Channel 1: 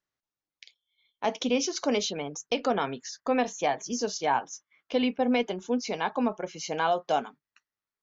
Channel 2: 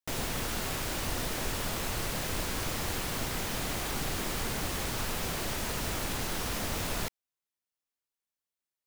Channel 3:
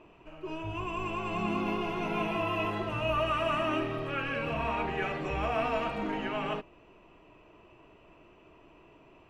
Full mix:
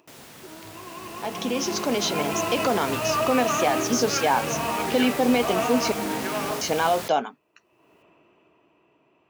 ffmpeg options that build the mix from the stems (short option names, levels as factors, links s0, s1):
-filter_complex "[0:a]volume=0.668,asplit=3[s0][s1][s2];[s0]atrim=end=5.92,asetpts=PTS-STARTPTS,afade=t=out:st=5.916:d=0.004:c=hsin[s3];[s1]atrim=start=5.92:end=6.61,asetpts=PTS-STARTPTS,volume=0[s4];[s2]atrim=start=6.61,asetpts=PTS-STARTPTS,afade=t=in:d=0.004:c=hsin[s5];[s3][s4][s5]concat=n=3:v=0:a=1[s6];[1:a]volume=0.282[s7];[2:a]afwtdn=0.0112,volume=0.473[s8];[s6][s8]amix=inputs=2:normalize=0,acompressor=mode=upward:threshold=0.00398:ratio=2.5,alimiter=limit=0.0708:level=0:latency=1:release=75,volume=1[s9];[s7][s9]amix=inputs=2:normalize=0,highpass=140,dynaudnorm=f=200:g=17:m=3.76"